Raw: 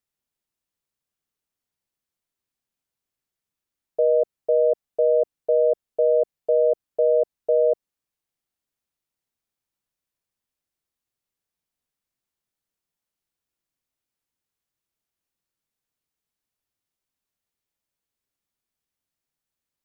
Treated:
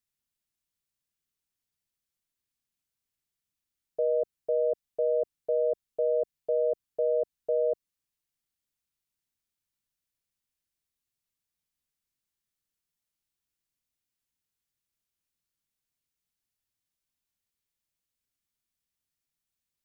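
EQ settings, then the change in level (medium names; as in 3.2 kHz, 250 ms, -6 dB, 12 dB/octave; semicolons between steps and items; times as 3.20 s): peaking EQ 640 Hz -8 dB 2.7 oct; 0.0 dB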